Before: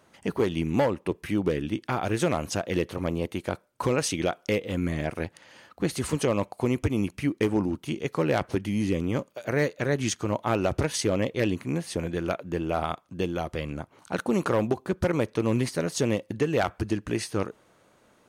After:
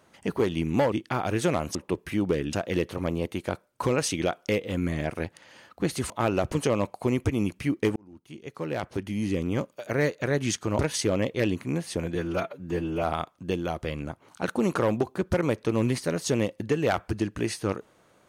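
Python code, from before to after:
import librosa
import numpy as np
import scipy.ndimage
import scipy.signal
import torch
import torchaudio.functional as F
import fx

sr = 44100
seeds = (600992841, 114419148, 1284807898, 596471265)

y = fx.edit(x, sr, fx.move(start_s=0.92, length_s=0.78, to_s=2.53),
    fx.fade_in_span(start_s=7.54, length_s=1.6),
    fx.move(start_s=10.37, length_s=0.42, to_s=6.1),
    fx.stretch_span(start_s=12.15, length_s=0.59, factor=1.5), tone=tone)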